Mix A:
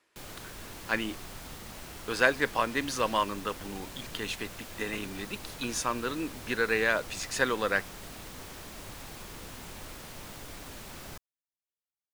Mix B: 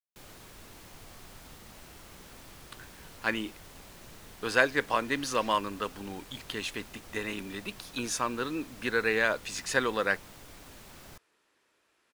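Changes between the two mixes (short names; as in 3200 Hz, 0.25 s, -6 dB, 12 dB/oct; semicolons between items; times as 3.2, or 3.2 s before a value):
speech: entry +2.35 s; background -6.0 dB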